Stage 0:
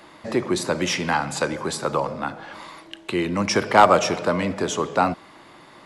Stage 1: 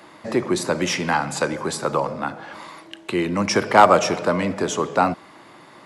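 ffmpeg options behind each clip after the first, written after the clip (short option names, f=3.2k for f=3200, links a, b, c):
-af "highpass=86,equalizer=f=3.5k:w=1.5:g=-2.5,volume=1.5dB"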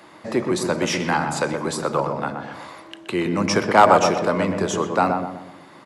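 -filter_complex "[0:a]asplit=2[a][b];[b]adelay=124,lowpass=f=1.1k:p=1,volume=-3.5dB,asplit=2[c][d];[d]adelay=124,lowpass=f=1.1k:p=1,volume=0.47,asplit=2[e][f];[f]adelay=124,lowpass=f=1.1k:p=1,volume=0.47,asplit=2[g][h];[h]adelay=124,lowpass=f=1.1k:p=1,volume=0.47,asplit=2[i][j];[j]adelay=124,lowpass=f=1.1k:p=1,volume=0.47,asplit=2[k][l];[l]adelay=124,lowpass=f=1.1k:p=1,volume=0.47[m];[a][c][e][g][i][k][m]amix=inputs=7:normalize=0,volume=-1dB"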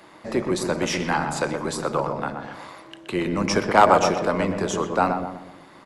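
-af "tremolo=f=190:d=0.462"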